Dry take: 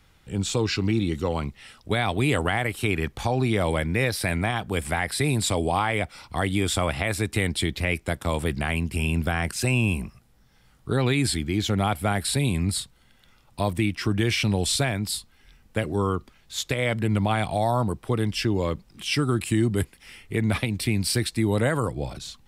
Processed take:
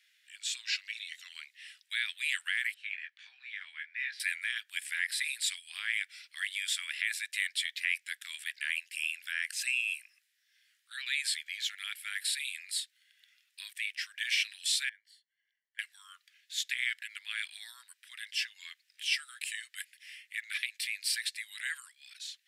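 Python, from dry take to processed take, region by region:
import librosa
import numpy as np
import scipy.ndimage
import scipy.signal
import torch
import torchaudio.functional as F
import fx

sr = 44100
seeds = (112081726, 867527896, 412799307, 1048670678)

y = fx.chain(x, sr, fx.spacing_loss(db_at_10k=30),
    fx.doubler(ms=21.0, db=-4.5),
    fx.band_widen(depth_pct=40), at=(2.74, 4.2))
y = fx.chain(y, sr, fx.halfwave_gain(db=-3.0),
    fx.moving_average(points=35), at=(14.89, 15.79))
y = scipy.signal.sosfilt(scipy.signal.cheby1(5, 1.0, 1700.0, 'highpass', fs=sr, output='sos'), y)
y = fx.high_shelf(y, sr, hz=6500.0, db=-6.0)
y = y * 10.0 ** (-1.5 / 20.0)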